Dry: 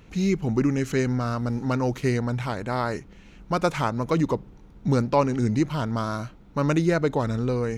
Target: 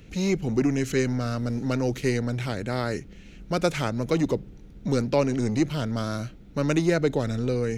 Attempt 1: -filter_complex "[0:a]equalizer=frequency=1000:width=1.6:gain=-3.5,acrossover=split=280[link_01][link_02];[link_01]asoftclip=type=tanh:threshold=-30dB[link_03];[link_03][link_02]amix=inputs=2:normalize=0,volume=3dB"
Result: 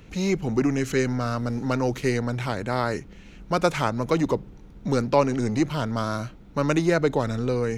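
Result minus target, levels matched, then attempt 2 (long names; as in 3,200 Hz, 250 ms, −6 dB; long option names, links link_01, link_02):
1,000 Hz band +5.0 dB
-filter_complex "[0:a]equalizer=frequency=1000:width=1.6:gain=-13,acrossover=split=280[link_01][link_02];[link_01]asoftclip=type=tanh:threshold=-30dB[link_03];[link_03][link_02]amix=inputs=2:normalize=0,volume=3dB"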